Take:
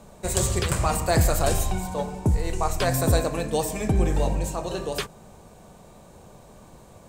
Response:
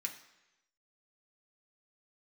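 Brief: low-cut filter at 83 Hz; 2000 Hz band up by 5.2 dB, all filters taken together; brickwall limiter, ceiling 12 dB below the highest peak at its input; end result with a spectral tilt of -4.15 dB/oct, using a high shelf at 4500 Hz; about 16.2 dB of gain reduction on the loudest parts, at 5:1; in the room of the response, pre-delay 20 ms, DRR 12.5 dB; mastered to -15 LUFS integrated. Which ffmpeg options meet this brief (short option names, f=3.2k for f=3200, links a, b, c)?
-filter_complex "[0:a]highpass=83,equalizer=f=2k:t=o:g=6,highshelf=f=4.5k:g=3.5,acompressor=threshold=-36dB:ratio=5,alimiter=level_in=5.5dB:limit=-24dB:level=0:latency=1,volume=-5.5dB,asplit=2[a][b];[1:a]atrim=start_sample=2205,adelay=20[c];[b][c]afir=irnorm=-1:irlink=0,volume=-12dB[d];[a][d]amix=inputs=2:normalize=0,volume=26dB"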